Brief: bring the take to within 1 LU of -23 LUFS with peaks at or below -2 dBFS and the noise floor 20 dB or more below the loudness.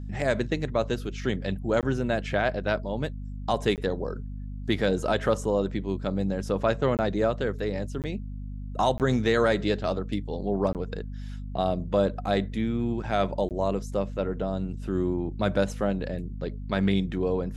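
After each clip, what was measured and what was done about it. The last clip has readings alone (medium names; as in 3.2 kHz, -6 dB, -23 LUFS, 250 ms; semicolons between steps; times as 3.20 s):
dropouts 7; longest dropout 18 ms; hum 50 Hz; highest harmonic 250 Hz; hum level -33 dBFS; loudness -28.0 LUFS; peak level -10.5 dBFS; loudness target -23.0 LUFS
-> interpolate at 1.81/3.76/6.97/8.02/8.98/10.73/13.49 s, 18 ms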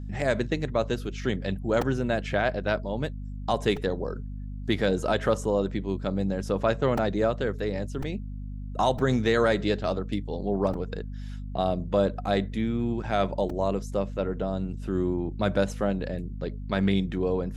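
dropouts 0; hum 50 Hz; highest harmonic 250 Hz; hum level -33 dBFS
-> de-hum 50 Hz, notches 5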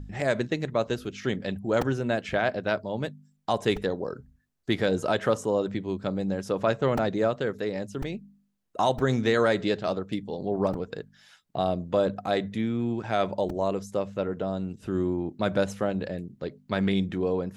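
hum not found; loudness -28.0 LUFS; peak level -11.0 dBFS; loudness target -23.0 LUFS
-> trim +5 dB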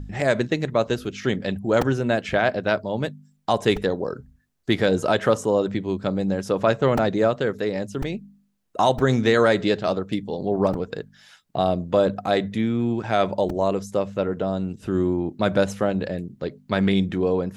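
loudness -23.0 LUFS; peak level -6.0 dBFS; noise floor -63 dBFS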